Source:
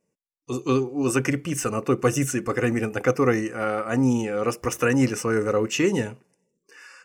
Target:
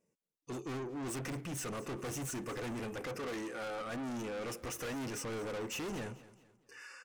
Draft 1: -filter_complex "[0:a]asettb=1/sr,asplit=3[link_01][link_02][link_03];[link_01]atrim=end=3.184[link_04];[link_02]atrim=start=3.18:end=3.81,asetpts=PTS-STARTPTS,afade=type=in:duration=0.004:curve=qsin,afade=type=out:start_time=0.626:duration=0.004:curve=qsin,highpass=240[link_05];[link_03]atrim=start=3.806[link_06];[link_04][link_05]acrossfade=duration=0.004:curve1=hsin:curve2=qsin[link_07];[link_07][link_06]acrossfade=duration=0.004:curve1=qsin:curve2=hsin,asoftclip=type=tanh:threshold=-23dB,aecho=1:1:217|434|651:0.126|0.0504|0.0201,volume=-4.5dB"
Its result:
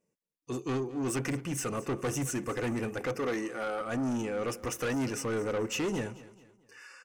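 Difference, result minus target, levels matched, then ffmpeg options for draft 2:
soft clipping: distortion −5 dB
-filter_complex "[0:a]asettb=1/sr,asplit=3[link_01][link_02][link_03];[link_01]atrim=end=3.184[link_04];[link_02]atrim=start=3.18:end=3.81,asetpts=PTS-STARTPTS,afade=type=in:duration=0.004:curve=qsin,afade=type=out:start_time=0.626:duration=0.004:curve=qsin,highpass=240[link_05];[link_03]atrim=start=3.806[link_06];[link_04][link_05]acrossfade=duration=0.004:curve1=hsin:curve2=qsin[link_07];[link_07][link_06]acrossfade=duration=0.004:curve1=qsin:curve2=hsin,asoftclip=type=tanh:threshold=-33.5dB,aecho=1:1:217|434|651:0.126|0.0504|0.0201,volume=-4.5dB"

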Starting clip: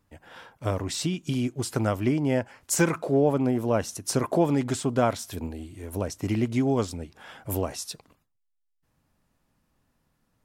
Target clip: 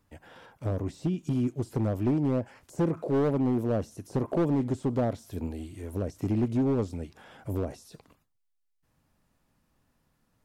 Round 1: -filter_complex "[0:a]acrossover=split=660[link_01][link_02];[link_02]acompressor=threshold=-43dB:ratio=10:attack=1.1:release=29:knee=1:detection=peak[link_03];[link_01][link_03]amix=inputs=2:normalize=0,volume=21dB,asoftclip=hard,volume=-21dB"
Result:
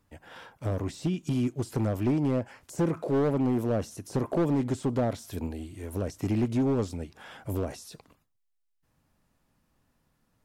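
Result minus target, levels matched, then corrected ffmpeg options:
downward compressor: peak gain reduction −7 dB
-filter_complex "[0:a]acrossover=split=660[link_01][link_02];[link_02]acompressor=threshold=-51dB:ratio=10:attack=1.1:release=29:knee=1:detection=peak[link_03];[link_01][link_03]amix=inputs=2:normalize=0,volume=21dB,asoftclip=hard,volume=-21dB"

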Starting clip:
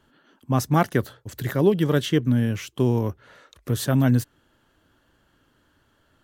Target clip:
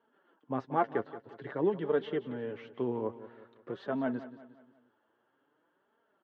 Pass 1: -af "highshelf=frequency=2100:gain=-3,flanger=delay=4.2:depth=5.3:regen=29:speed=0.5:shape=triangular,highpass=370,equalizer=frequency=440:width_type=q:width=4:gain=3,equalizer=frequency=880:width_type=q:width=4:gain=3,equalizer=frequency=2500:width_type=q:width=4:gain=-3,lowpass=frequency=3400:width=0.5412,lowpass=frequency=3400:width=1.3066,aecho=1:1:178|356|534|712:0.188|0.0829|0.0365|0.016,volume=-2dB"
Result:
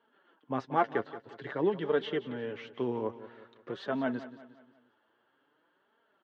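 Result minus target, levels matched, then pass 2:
4,000 Hz band +7.0 dB
-af "highshelf=frequency=2100:gain=-14,flanger=delay=4.2:depth=5.3:regen=29:speed=0.5:shape=triangular,highpass=370,equalizer=frequency=440:width_type=q:width=4:gain=3,equalizer=frequency=880:width_type=q:width=4:gain=3,equalizer=frequency=2500:width_type=q:width=4:gain=-3,lowpass=frequency=3400:width=0.5412,lowpass=frequency=3400:width=1.3066,aecho=1:1:178|356|534|712:0.188|0.0829|0.0365|0.016,volume=-2dB"

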